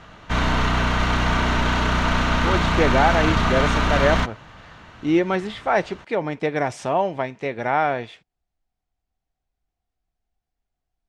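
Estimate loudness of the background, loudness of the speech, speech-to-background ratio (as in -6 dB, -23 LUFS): -21.0 LUFS, -23.5 LUFS, -2.5 dB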